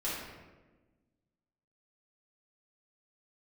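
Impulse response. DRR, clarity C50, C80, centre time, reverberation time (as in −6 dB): −10.0 dB, −0.5 dB, 2.5 dB, 80 ms, 1.2 s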